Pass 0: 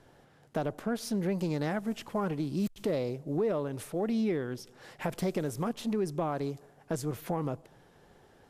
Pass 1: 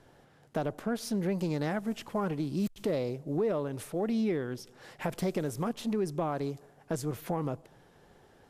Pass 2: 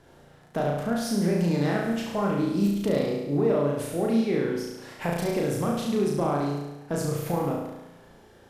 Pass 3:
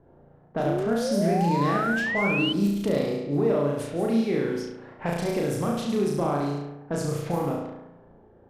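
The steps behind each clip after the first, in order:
no processing that can be heard
flutter between parallel walls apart 6 metres, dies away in 1 s; level +2.5 dB
low-pass that shuts in the quiet parts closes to 720 Hz, open at −22.5 dBFS; sound drawn into the spectrogram rise, 0:00.65–0:02.53, 310–3,100 Hz −28 dBFS

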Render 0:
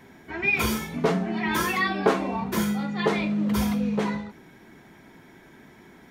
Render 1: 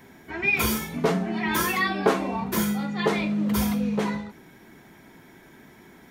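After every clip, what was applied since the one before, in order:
high-shelf EQ 9,500 Hz +9 dB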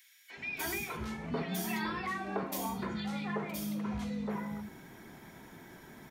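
downward compressor, threshold −32 dBFS, peak gain reduction 16 dB
three-band delay without the direct sound highs, mids, lows 300/370 ms, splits 330/2,300 Hz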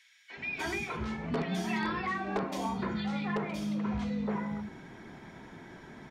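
in parallel at −5.5 dB: wrap-around overflow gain 25 dB
on the sum: high-frequency loss of the air 100 metres

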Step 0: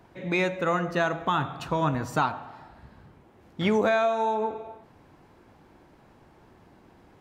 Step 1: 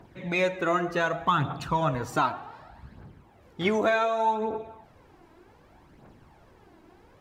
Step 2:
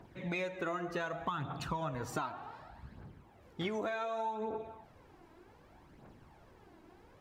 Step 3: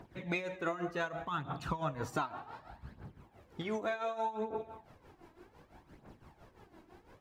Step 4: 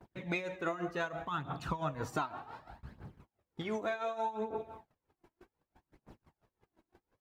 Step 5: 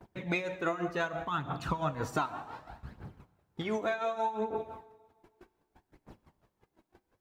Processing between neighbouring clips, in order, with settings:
phase shifter 0.66 Hz, delay 3.2 ms, feedback 51%; level −1 dB
downward compressor 12 to 1, threshold −29 dBFS, peak gain reduction 11 dB; level −4 dB
amplitude tremolo 5.9 Hz, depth 72%; level +3.5 dB
noise gate −54 dBFS, range −27 dB
four-comb reverb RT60 1.8 s, combs from 30 ms, DRR 18 dB; level +3.5 dB

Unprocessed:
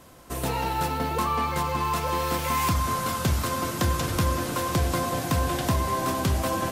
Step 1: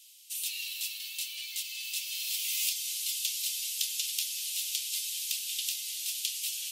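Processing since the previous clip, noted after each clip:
Butterworth high-pass 2,700 Hz 48 dB per octave
level +3 dB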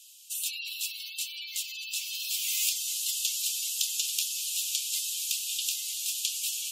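gate on every frequency bin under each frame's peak −15 dB strong
parametric band 7,100 Hz +4.5 dB 0.28 octaves
level +2 dB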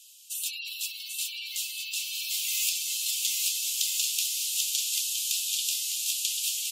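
bouncing-ball delay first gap 790 ms, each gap 0.7×, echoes 5

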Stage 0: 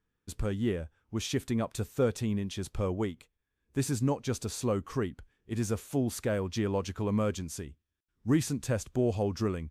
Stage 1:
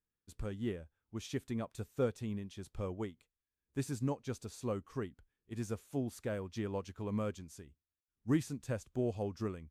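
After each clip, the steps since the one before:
expander for the loud parts 1.5 to 1, over −40 dBFS
level −4.5 dB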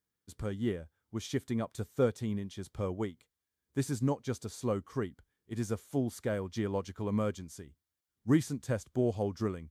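high-pass filter 64 Hz
notch filter 2,600 Hz, Q 9.1
level +5 dB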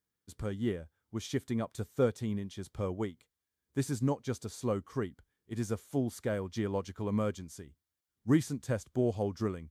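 no processing that can be heard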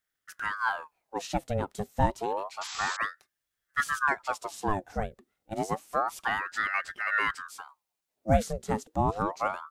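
sound drawn into the spectrogram noise, 0:02.61–0:02.97, 1,900–6,700 Hz −42 dBFS
ring modulator whose carrier an LFO sweeps 1,000 Hz, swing 70%, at 0.29 Hz
level +6 dB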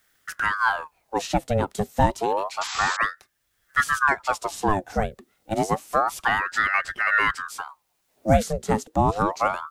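multiband upward and downward compressor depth 40%
level +7 dB

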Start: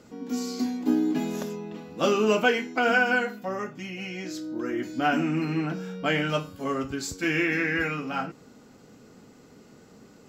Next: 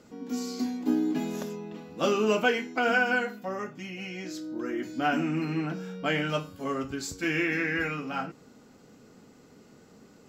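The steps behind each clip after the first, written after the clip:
mains-hum notches 60/120 Hz
level −2.5 dB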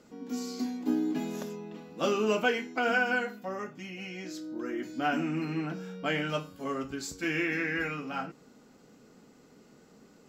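parametric band 95 Hz −11.5 dB 0.4 octaves
level −2.5 dB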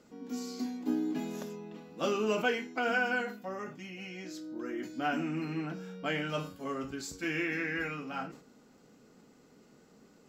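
level that may fall only so fast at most 110 dB per second
level −3 dB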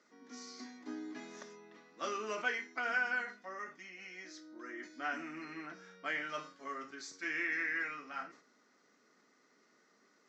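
loudspeaker in its box 430–6,100 Hz, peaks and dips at 490 Hz −7 dB, 800 Hz −6 dB, 1,200 Hz +4 dB, 1,900 Hz +9 dB, 2,800 Hz −6 dB, 6,000 Hz +6 dB
level −4.5 dB

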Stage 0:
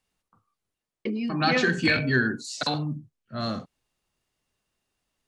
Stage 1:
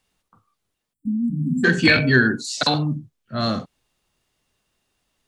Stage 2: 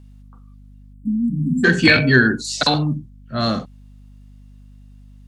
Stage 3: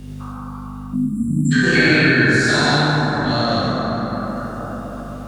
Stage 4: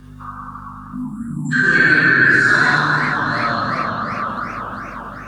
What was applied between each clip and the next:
time-frequency box erased 0:00.93–0:01.64, 300–7,200 Hz; parametric band 3,500 Hz +2.5 dB 0.32 octaves; level +7 dB
mains hum 50 Hz, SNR 23 dB; level +2.5 dB
every bin's largest magnitude spread in time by 240 ms; dense smooth reverb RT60 3.2 s, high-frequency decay 0.35×, DRR −4.5 dB; multiband upward and downward compressor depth 70%; level −10.5 dB
spectral magnitudes quantised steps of 15 dB; flat-topped bell 1,300 Hz +13 dB 1 octave; feedback echo with a swinging delay time 389 ms, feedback 61%, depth 206 cents, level −12 dB; level −6 dB

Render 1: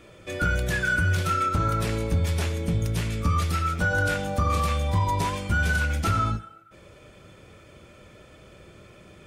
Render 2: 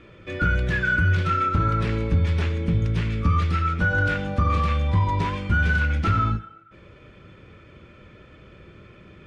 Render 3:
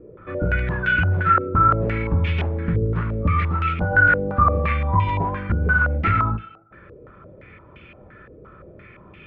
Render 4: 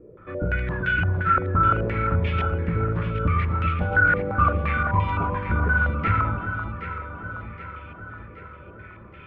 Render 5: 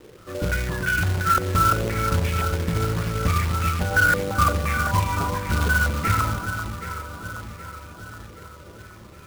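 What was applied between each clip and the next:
low-pass filter 2,800 Hz 12 dB per octave; parametric band 690 Hz −8 dB 0.9 octaves; level +3.5 dB
low-pass on a step sequencer 5.8 Hz 460–2,700 Hz
delay that swaps between a low-pass and a high-pass 386 ms, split 1,200 Hz, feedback 73%, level −6.5 dB; level −3.5 dB
low-pass that shuts in the quiet parts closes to 1,300 Hz, open at −15.5 dBFS; log-companded quantiser 4 bits

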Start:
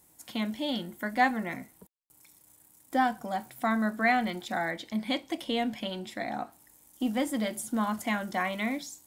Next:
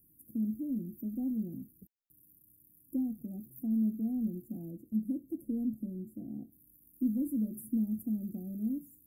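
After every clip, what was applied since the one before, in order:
inverse Chebyshev band-stop filter 1,100–4,500 Hz, stop band 70 dB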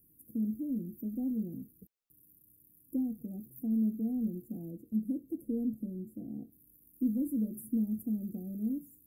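hollow resonant body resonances 460/1,200/2,600 Hz, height 8 dB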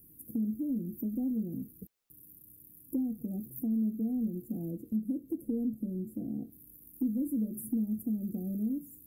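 downward compressor 2 to 1, threshold −43 dBFS, peak gain reduction 10 dB
level +8 dB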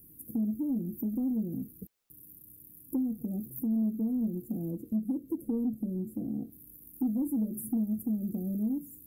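soft clipping −23 dBFS, distortion −25 dB
level +2.5 dB

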